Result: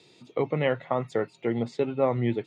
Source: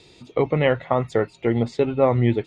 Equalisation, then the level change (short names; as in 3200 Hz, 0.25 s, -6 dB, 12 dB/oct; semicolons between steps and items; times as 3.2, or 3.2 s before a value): HPF 120 Hz 24 dB/oct; -6.0 dB